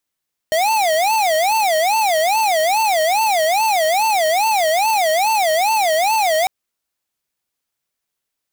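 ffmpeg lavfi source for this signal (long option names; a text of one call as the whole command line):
ffmpeg -f lavfi -i "aevalsrc='0.158*(2*lt(mod((757.5*t-134.5/(2*PI*2.4)*sin(2*PI*2.4*t)),1),0.5)-1)':duration=5.95:sample_rate=44100" out.wav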